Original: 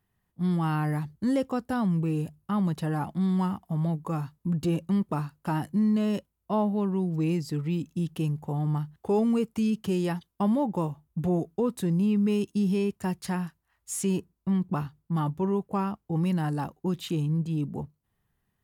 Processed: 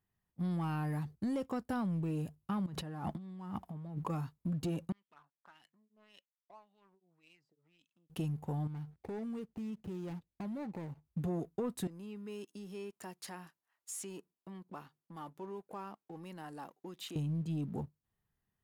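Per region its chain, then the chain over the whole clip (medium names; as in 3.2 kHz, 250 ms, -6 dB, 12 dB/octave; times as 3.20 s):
2.66–4.10 s: treble shelf 4.9 kHz -7 dB + compressor with a negative ratio -38 dBFS
4.92–8.10 s: compression 12:1, threshold -31 dBFS + tremolo triangle 1.8 Hz, depth 100% + LFO band-pass sine 1.8 Hz 500–3400 Hz
8.67–11.05 s: median filter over 41 samples + compression 5:1, threshold -36 dBFS
11.87–17.16 s: compression 2.5:1, threshold -38 dBFS + high-pass 320 Hz
whole clip: waveshaping leveller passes 1; compression, threshold -25 dBFS; trim -7.5 dB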